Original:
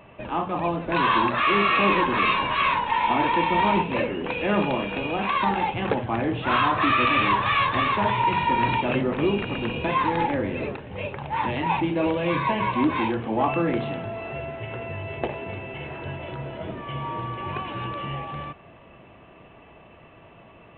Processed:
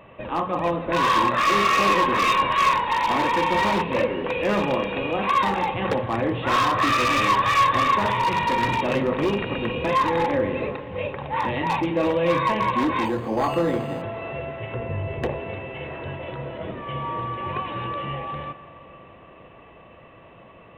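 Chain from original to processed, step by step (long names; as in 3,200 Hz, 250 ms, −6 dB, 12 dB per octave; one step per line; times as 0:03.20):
0:14.74–0:15.40: spectral tilt −2 dB per octave
wave folding −17 dBFS
hollow resonant body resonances 520/1,100/1,900/3,700 Hz, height 8 dB
convolution reverb RT60 3.9 s, pre-delay 38 ms, DRR 13.5 dB
0:13.05–0:14.02: linearly interpolated sample-rate reduction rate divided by 8×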